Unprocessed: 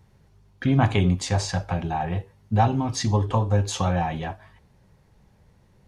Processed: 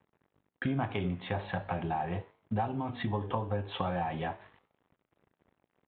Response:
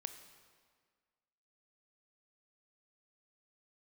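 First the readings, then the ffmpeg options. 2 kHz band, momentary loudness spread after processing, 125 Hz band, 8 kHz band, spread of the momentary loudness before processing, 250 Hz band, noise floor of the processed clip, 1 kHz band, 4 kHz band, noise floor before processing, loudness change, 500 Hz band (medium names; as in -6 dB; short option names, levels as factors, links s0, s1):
-6.5 dB, 5 LU, -13.5 dB, under -40 dB, 9 LU, -9.5 dB, -85 dBFS, -8.0 dB, -11.5 dB, -59 dBFS, -10.5 dB, -7.5 dB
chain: -af "aresample=8000,aeval=exprs='sgn(val(0))*max(abs(val(0))-0.00224,0)':c=same,aresample=44100,highpass=f=230:p=1,acompressor=threshold=0.0251:ratio=4,flanger=delay=9.7:depth=9.9:regen=-89:speed=0.42:shape=triangular,lowpass=f=2600:p=1,volume=2.11"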